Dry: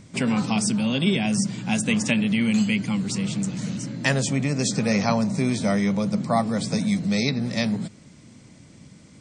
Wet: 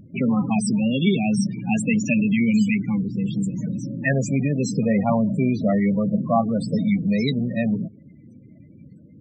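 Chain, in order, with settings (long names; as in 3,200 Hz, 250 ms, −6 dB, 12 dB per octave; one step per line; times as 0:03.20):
low-shelf EQ 69 Hz −5 dB
spectral peaks only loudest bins 16
0:02.74–0:03.26: high-frequency loss of the air 400 metres
level +3 dB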